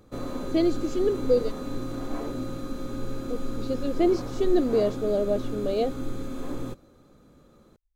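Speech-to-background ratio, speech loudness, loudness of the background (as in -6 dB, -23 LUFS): 8.5 dB, -26.5 LUFS, -35.0 LUFS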